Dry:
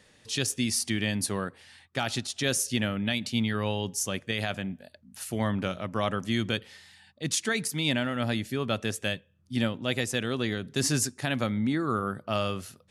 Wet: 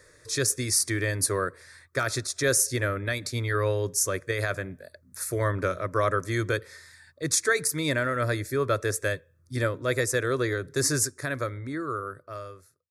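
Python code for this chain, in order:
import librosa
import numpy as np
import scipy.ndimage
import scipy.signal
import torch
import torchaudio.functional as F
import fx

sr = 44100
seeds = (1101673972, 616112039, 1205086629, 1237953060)

y = fx.fade_out_tail(x, sr, length_s=2.51)
y = fx.fixed_phaser(y, sr, hz=800.0, stages=6)
y = y * librosa.db_to_amplitude(7.0)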